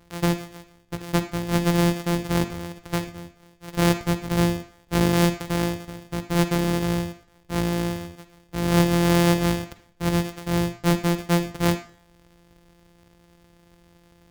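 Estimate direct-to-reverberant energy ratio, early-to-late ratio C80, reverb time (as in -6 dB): 10.0 dB, 16.0 dB, 0.50 s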